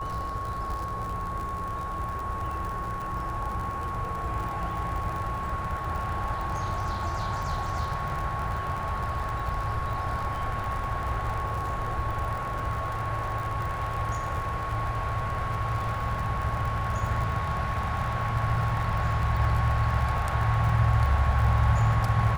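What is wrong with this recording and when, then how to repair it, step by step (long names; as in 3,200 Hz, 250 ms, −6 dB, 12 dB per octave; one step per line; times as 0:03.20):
surface crackle 56 per second −32 dBFS
whistle 1,100 Hz −32 dBFS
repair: click removal
notch filter 1,100 Hz, Q 30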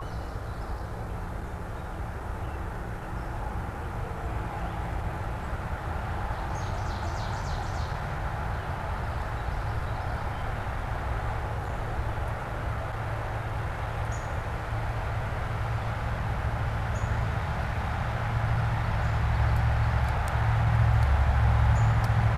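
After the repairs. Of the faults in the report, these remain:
none of them is left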